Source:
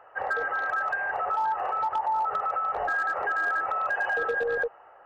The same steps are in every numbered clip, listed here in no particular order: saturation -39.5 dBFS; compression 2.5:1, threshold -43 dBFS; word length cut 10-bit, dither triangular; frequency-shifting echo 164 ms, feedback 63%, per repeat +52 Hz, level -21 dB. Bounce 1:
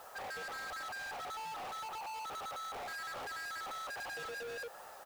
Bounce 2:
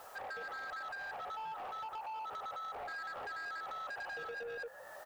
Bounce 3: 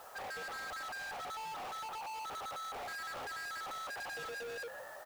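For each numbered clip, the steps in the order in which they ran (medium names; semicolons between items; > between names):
saturation > frequency-shifting echo > word length cut > compression; frequency-shifting echo > word length cut > compression > saturation; frequency-shifting echo > saturation > word length cut > compression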